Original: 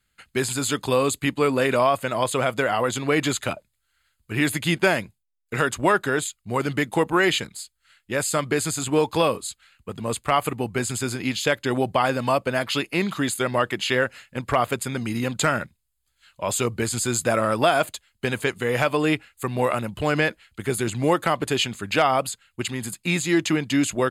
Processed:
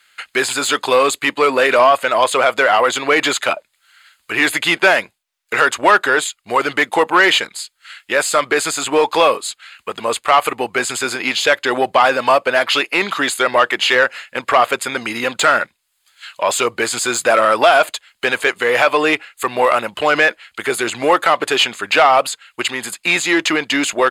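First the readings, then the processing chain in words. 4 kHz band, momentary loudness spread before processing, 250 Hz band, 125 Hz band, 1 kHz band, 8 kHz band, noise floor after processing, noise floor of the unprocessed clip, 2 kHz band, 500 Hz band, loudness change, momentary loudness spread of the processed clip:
+10.0 dB, 9 LU, +0.5 dB, -10.5 dB, +10.0 dB, +5.5 dB, -66 dBFS, -74 dBFS, +11.0 dB, +7.0 dB, +8.0 dB, 9 LU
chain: overdrive pedal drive 14 dB, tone 4.5 kHz, clips at -7 dBFS; tone controls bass -14 dB, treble -3 dB; tape noise reduction on one side only encoder only; trim +5.5 dB

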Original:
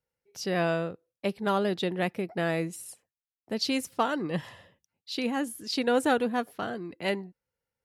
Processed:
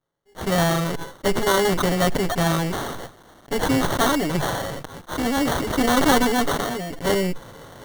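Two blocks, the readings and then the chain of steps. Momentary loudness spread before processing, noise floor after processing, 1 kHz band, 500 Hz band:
11 LU, -52 dBFS, +9.0 dB, +6.5 dB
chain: comb filter that takes the minimum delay 7.1 ms; sample-rate reducer 2.5 kHz, jitter 0%; decay stretcher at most 26 dB/s; trim +8 dB

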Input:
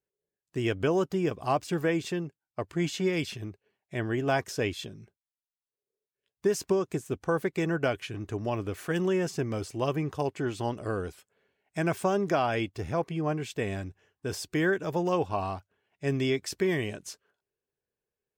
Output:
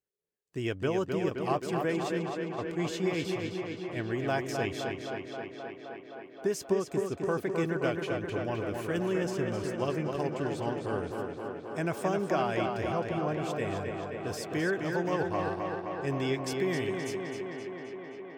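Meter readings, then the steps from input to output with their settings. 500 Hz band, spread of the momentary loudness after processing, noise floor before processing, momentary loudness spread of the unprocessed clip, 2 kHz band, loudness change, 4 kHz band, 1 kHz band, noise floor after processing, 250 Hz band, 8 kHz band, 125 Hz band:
-1.0 dB, 8 LU, under -85 dBFS, 11 LU, -1.5 dB, -2.0 dB, -2.5 dB, -1.0 dB, -48 dBFS, -1.5 dB, -3.5 dB, -2.5 dB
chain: tape echo 262 ms, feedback 86%, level -3.5 dB, low-pass 4.6 kHz; trim -4 dB

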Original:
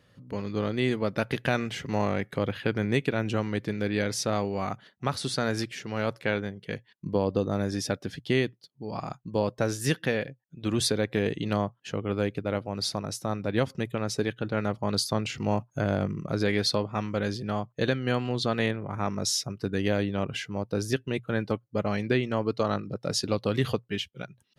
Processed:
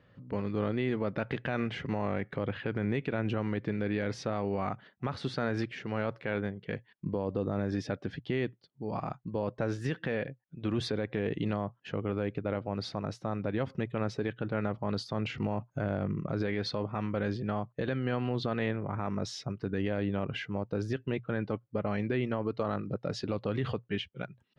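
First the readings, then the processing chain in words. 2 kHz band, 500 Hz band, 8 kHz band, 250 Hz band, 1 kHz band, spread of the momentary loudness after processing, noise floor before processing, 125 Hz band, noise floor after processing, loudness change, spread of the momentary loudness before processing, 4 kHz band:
-6.0 dB, -5.0 dB, -18.0 dB, -3.5 dB, -5.0 dB, 5 LU, -66 dBFS, -3.5 dB, -67 dBFS, -4.5 dB, 6 LU, -10.0 dB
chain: low-pass 2.5 kHz 12 dB/octave; peak limiter -21 dBFS, peak gain reduction 9 dB

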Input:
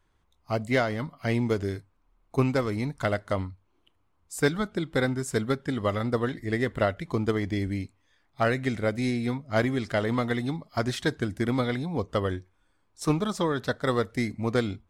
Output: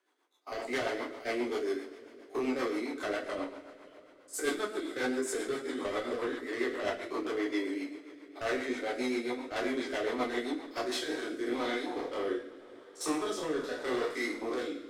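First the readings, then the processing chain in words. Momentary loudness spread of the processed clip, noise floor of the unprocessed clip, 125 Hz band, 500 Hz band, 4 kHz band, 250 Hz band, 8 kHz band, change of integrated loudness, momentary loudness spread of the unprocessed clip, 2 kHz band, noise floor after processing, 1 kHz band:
9 LU, -69 dBFS, -28.0 dB, -5.0 dB, -3.0 dB, -7.0 dB, -1.0 dB, -6.5 dB, 6 LU, -4.5 dB, -56 dBFS, -5.5 dB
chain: spectrogram pixelated in time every 50 ms; steep high-pass 290 Hz 48 dB/octave; saturation -29.5 dBFS, distortion -8 dB; two-slope reverb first 0.5 s, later 3.7 s, from -18 dB, DRR -2.5 dB; rotary cabinet horn 7.5 Hz, later 0.85 Hz, at 10.58 s

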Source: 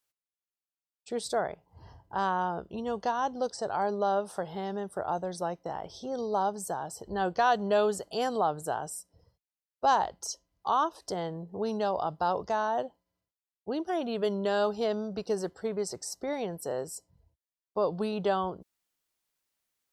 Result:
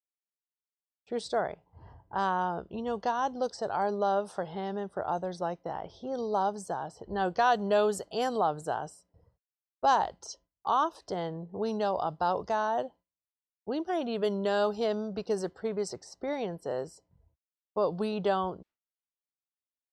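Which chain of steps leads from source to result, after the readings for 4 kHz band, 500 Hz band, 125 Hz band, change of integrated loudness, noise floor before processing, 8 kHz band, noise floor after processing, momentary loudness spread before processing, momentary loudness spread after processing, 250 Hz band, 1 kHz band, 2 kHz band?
-1.0 dB, 0.0 dB, 0.0 dB, 0.0 dB, under -85 dBFS, -6.0 dB, under -85 dBFS, 11 LU, 11 LU, 0.0 dB, 0.0 dB, 0.0 dB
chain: level-controlled noise filter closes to 1.7 kHz, open at -24.5 dBFS; gate with hold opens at -58 dBFS

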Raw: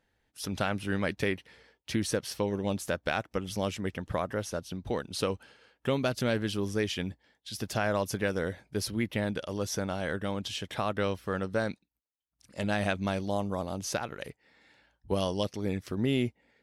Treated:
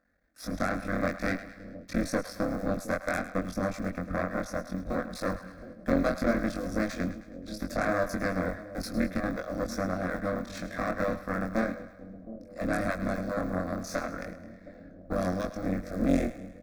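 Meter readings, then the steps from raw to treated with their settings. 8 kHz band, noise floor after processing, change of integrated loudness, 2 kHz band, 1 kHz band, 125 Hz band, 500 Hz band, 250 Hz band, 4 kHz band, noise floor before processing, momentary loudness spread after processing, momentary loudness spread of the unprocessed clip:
-5.5 dB, -50 dBFS, +0.5 dB, +1.0 dB, +1.5 dB, -2.0 dB, 0.0 dB, +2.5 dB, -9.0 dB, -81 dBFS, 14 LU, 8 LU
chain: cycle switcher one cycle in 3, muted; peaking EQ 9.7 kHz -13 dB 1.6 oct; in parallel at -2 dB: peak limiter -28 dBFS, peak gain reduction 11.5 dB; on the sum: Chebyshev shaper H 4 -9 dB, 6 -20 dB, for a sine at -14.5 dBFS; static phaser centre 600 Hz, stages 8; doubling 22 ms -2.5 dB; on a send: two-band feedback delay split 580 Hz, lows 716 ms, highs 106 ms, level -13 dB

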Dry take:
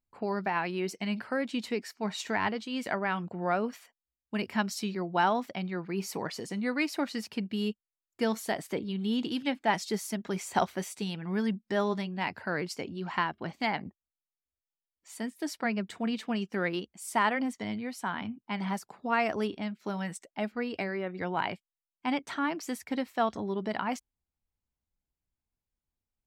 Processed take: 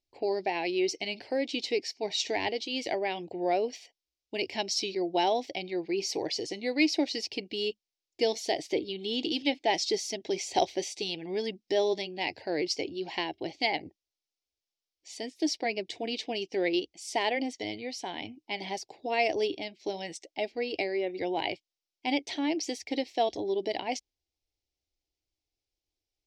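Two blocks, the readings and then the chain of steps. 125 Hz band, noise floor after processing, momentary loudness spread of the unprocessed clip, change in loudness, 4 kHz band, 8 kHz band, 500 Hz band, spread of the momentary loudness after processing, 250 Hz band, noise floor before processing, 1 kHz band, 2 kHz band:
-11.0 dB, under -85 dBFS, 7 LU, +1.0 dB, +7.5 dB, +4.0 dB, +4.0 dB, 8 LU, -2.0 dB, under -85 dBFS, -1.5 dB, -1.5 dB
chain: FFT filter 120 Hz 0 dB, 210 Hz -11 dB, 310 Hz +10 dB, 550 Hz +6 dB, 790 Hz +5 dB, 1.3 kHz -21 dB, 2.1 kHz +6 dB, 5.5 kHz +14 dB, 7.9 kHz 0 dB, 13 kHz -12 dB; trim -3 dB

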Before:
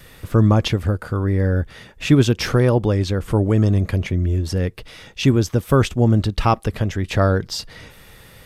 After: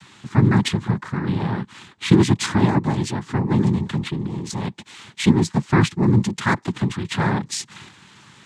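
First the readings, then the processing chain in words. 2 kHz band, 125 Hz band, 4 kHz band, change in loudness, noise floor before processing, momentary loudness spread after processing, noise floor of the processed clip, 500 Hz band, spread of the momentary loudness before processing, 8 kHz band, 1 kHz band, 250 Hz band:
+1.5 dB, -3.0 dB, -0.5 dB, -2.0 dB, -46 dBFS, 12 LU, -50 dBFS, -6.0 dB, 8 LU, +2.5 dB, -0.5 dB, +0.5 dB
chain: noise-vocoded speech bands 6; high-order bell 570 Hz -10 dB 1 oct

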